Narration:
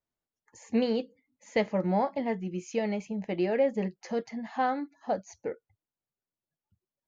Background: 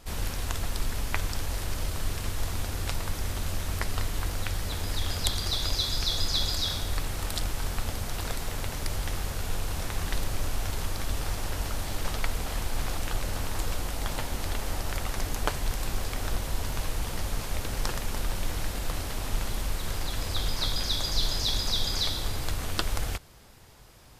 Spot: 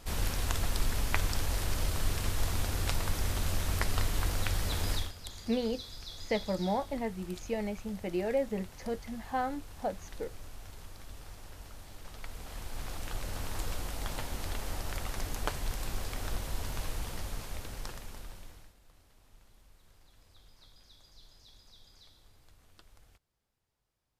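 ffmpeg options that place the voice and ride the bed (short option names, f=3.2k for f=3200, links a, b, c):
-filter_complex "[0:a]adelay=4750,volume=-4.5dB[a];[1:a]volume=11dB,afade=t=out:st=4.92:d=0.2:silence=0.149624,afade=t=in:st=12.08:d=1.46:silence=0.266073,afade=t=out:st=16.9:d=1.85:silence=0.0562341[b];[a][b]amix=inputs=2:normalize=0"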